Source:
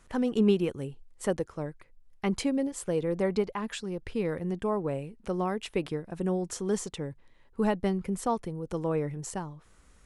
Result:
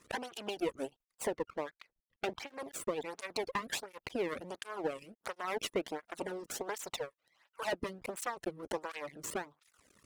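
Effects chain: reverb removal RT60 0.62 s; 6.95–7.73 s: steep high-pass 470 Hz 72 dB/octave; de-esser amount 85%; 1.33–2.54 s: low-pass 3.4 kHz 24 dB/octave; harmonic-percussive split harmonic -15 dB; compression 6:1, threshold -35 dBFS, peak gain reduction 11.5 dB; half-wave rectifier; cancelling through-zero flanger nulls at 1.4 Hz, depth 1.4 ms; trim +11.5 dB

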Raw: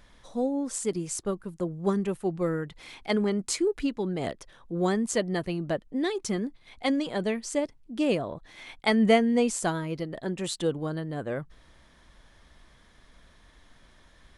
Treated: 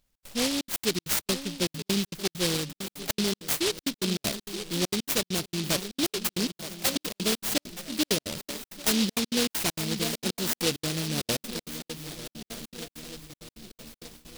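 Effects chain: 6.47–6.96 s: rippled Chebyshev high-pass 480 Hz, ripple 3 dB; shuffle delay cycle 1230 ms, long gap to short 3:1, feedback 50%, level -14 dB; gate with hold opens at -40 dBFS; trance gate "xx.xxxxx.x.xx." 198 bpm -60 dB; gain riding within 3 dB 0.5 s; treble shelf 3 kHz +7.5 dB; delay time shaken by noise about 3.8 kHz, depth 0.32 ms

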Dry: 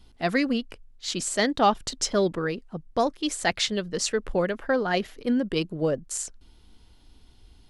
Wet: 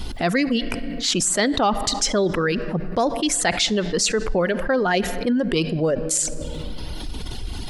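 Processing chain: reverb removal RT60 0.88 s; on a send at -20 dB: reverberation RT60 1.8 s, pre-delay 5 ms; on the sum: level flattener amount 70%

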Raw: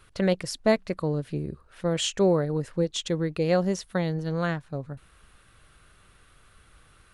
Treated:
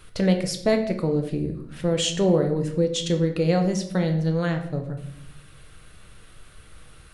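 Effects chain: peaking EQ 1.2 kHz -5 dB 1.2 oct; in parallel at +1.5 dB: compression, threshold -37 dBFS, peak gain reduction 19 dB; on the sum: simulated room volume 160 m³, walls mixed, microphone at 0.55 m

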